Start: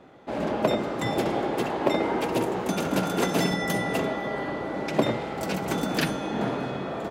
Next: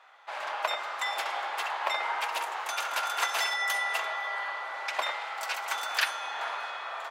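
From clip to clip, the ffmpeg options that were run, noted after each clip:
-af "highpass=f=940:w=0.5412,highpass=f=940:w=1.3066,highshelf=f=5.4k:g=-6,volume=3.5dB"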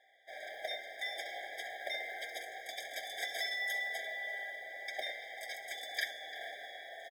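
-filter_complex "[0:a]acrusher=bits=6:mode=log:mix=0:aa=0.000001,asplit=2[a][b];[b]adelay=344,volume=-14dB,highshelf=f=4k:g=-7.74[c];[a][c]amix=inputs=2:normalize=0,afftfilt=real='re*eq(mod(floor(b*sr/1024/780),2),0)':imag='im*eq(mod(floor(b*sr/1024/780),2),0)':win_size=1024:overlap=0.75,volume=-6dB"

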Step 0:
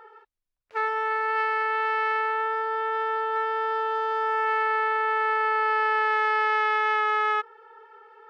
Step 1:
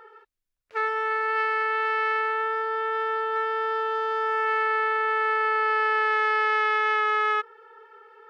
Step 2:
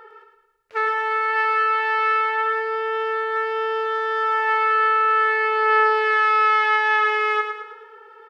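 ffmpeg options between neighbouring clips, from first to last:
-af "equalizer=f=830:t=o:w=0.52:g=-5.5,volume=1.5dB"
-af "aecho=1:1:108|216|324|432|540:0.447|0.205|0.0945|0.0435|0.02,volume=4dB"

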